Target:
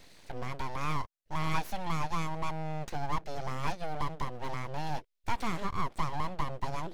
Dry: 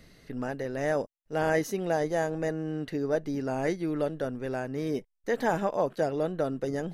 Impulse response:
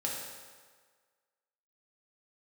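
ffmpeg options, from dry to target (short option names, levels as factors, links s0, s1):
-filter_complex "[0:a]equalizer=f=500:t=o:w=1:g=10,equalizer=f=1000:t=o:w=1:g=-11,equalizer=f=2000:t=o:w=1:g=5,equalizer=f=4000:t=o:w=1:g=8,asplit=2[s0][s1];[s1]acompressor=threshold=0.0282:ratio=6,volume=1.26[s2];[s0][s2]amix=inputs=2:normalize=0,aeval=exprs='abs(val(0))':c=same,volume=0.355"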